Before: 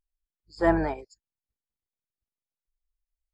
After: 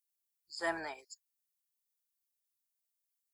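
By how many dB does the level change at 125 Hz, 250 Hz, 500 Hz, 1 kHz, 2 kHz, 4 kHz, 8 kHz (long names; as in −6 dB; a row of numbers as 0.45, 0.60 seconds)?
−27.5 dB, −20.0 dB, −14.5 dB, −11.5 dB, −5.0 dB, +3.0 dB, can't be measured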